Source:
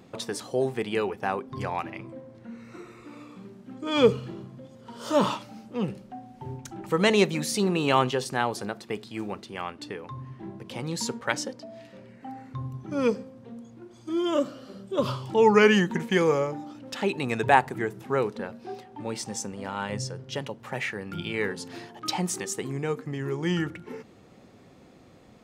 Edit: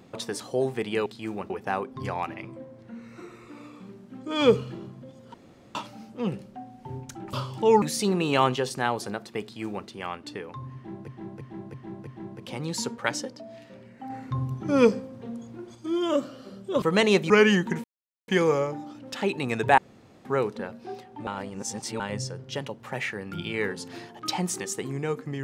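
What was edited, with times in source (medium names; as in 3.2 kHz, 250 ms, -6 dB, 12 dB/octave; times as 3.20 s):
4.90–5.31 s: room tone
6.89–7.37 s: swap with 15.05–15.54 s
8.98–9.42 s: copy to 1.06 s
10.30–10.63 s: loop, 5 plays
12.33–13.98 s: gain +5.5 dB
16.08 s: insert silence 0.44 s
17.58–18.05 s: room tone
19.07–19.80 s: reverse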